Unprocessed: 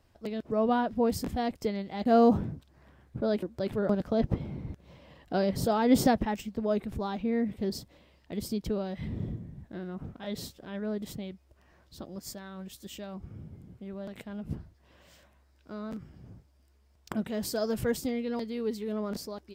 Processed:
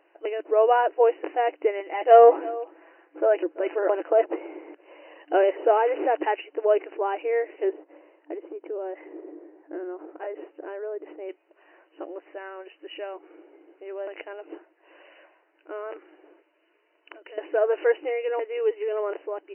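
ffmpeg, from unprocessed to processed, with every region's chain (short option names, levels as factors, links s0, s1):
-filter_complex "[0:a]asettb=1/sr,asplit=3[s0][s1][s2];[s0]atrim=end=1.804[s3];[s1]atrim=start=1.8:end=4.26,asetpts=PTS-STARTPTS,afade=t=in:d=0.004:c=qsin,afade=t=out:st=2.456:d=0.004:c=qsin,highpass=300,aecho=1:1:6:0.47,atrim=end_sample=108486,aecho=1:1:337:0.106,atrim=end_sample=108486[s4];[s2]atrim=start=4.256[s5];[s3][s4]acrossfade=d=0.004:c1=hsin:c2=qsin[s6];[s6][s5]acrossfade=d=0.004:c1=qsin:c2=hsin,asettb=1/sr,asplit=3[s7][s8][s9];[s7]atrim=end=5.724[s10];[s8]atrim=start=5.72:end=6.2,asetpts=PTS-STARTPTS,afade=t=in:d=0.004:c=qsin,afade=t=out:st=0.476:d=0.004:c=qsin,lowpass=f=1600:p=1,acompressor=threshold=0.0708:ratio=4:attack=3.2:release=140:knee=1:detection=peak,acrusher=bits=8:dc=4:mix=0:aa=0.000001[s11];[s9]atrim=start=6.196[s12];[s10][s11]acrossfade=d=0.004:c1=hsin:c2=qsin[s13];[s13][s12]acrossfade=d=0.004:c1=qsin:c2=hsin,asettb=1/sr,asplit=3[s14][s15][s16];[s14]atrim=end=7.734[s17];[s15]atrim=start=7.73:end=11.29,asetpts=PTS-STARTPTS,afade=t=in:d=0.004:c=qsin,afade=t=out:st=3.556:d=0.004:c=qsin,lowpass=1600,acompressor=threshold=0.0158:ratio=10:attack=3.2:release=140:knee=1:detection=peak,equalizer=f=140:w=0.59:g=8.5[s18];[s16]atrim=start=11.286[s19];[s17][s18]acrossfade=d=0.004:c1=hsin:c2=qsin[s20];[s20][s19]acrossfade=d=0.004:c1=qsin:c2=hsin,asettb=1/sr,asplit=3[s21][s22][s23];[s21]atrim=end=16.304[s24];[s22]atrim=start=16.3:end=17.38,asetpts=PTS-STARTPTS,afade=t=in:d=0.004:c=qsin,afade=t=out:st=1.076:d=0.004:c=qsin,acompressor=threshold=0.00562:ratio=16:attack=3.2:release=140:knee=1:detection=peak,asuperstop=centerf=780:order=4:qfactor=6.4,aemphasis=mode=production:type=75kf[s25];[s23]atrim=start=17.376[s26];[s24][s25]acrossfade=d=0.004:c1=hsin:c2=qsin[s27];[s27][s26]acrossfade=d=0.004:c1=qsin:c2=hsin,afftfilt=real='re*between(b*sr/4096,300,3000)':imag='im*between(b*sr/4096,300,3000)':win_size=4096:overlap=0.75,equalizer=f=1200:t=o:w=0.31:g=-4.5,acontrast=47,volume=1.5"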